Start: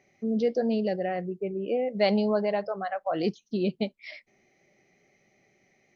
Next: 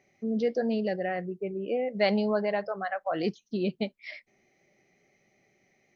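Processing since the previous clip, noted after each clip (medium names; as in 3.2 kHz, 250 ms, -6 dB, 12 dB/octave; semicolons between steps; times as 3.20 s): dynamic bell 1.7 kHz, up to +6 dB, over -48 dBFS, Q 1.6; trim -2 dB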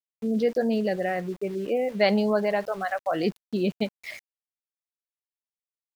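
small samples zeroed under -46 dBFS; trim +3.5 dB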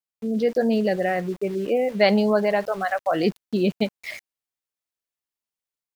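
level rider gain up to 4 dB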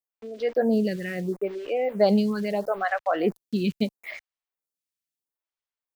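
lamp-driven phase shifter 0.76 Hz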